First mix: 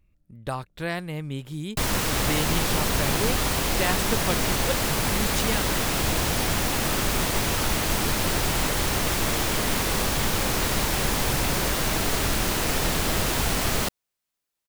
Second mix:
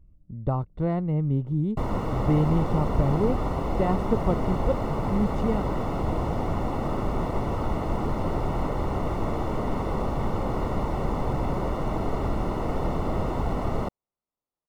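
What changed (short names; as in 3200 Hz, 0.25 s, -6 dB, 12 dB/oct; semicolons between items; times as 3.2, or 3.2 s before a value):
speech: add low shelf 310 Hz +10.5 dB; master: add polynomial smoothing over 65 samples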